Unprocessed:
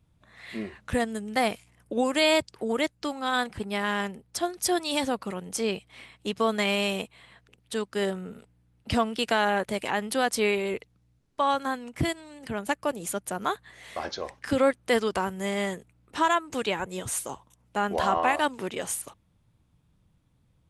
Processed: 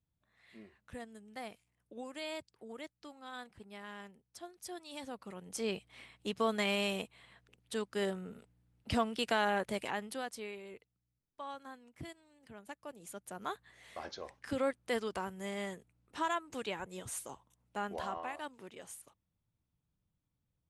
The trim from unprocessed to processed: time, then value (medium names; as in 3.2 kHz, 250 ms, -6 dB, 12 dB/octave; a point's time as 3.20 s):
4.88 s -20 dB
5.74 s -7 dB
9.80 s -7 dB
10.47 s -20 dB
12.82 s -20 dB
13.52 s -11 dB
17.82 s -11 dB
18.29 s -18 dB